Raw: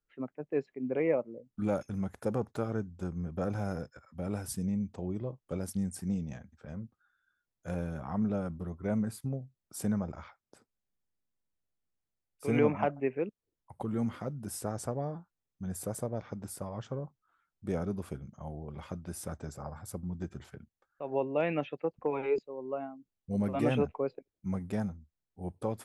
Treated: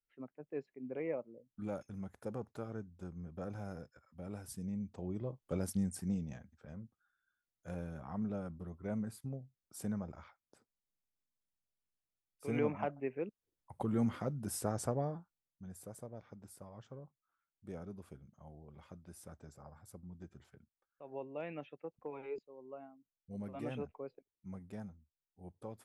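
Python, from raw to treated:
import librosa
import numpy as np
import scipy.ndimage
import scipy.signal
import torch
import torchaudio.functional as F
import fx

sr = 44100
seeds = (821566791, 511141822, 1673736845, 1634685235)

y = fx.gain(x, sr, db=fx.line((4.47, -10.0), (5.62, -0.5), (6.82, -7.5), (13.08, -7.5), (13.82, -0.5), (14.99, -0.5), (15.75, -13.0)))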